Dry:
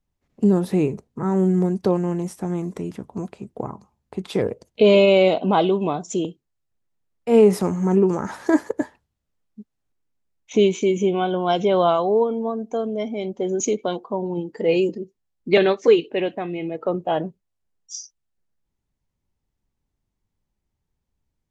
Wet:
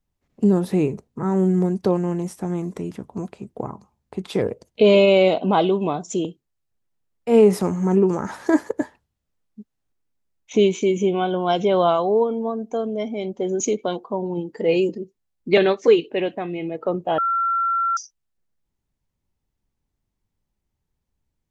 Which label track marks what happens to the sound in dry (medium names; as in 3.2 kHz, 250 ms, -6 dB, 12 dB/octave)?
17.180000	17.970000	bleep 1.36 kHz -18 dBFS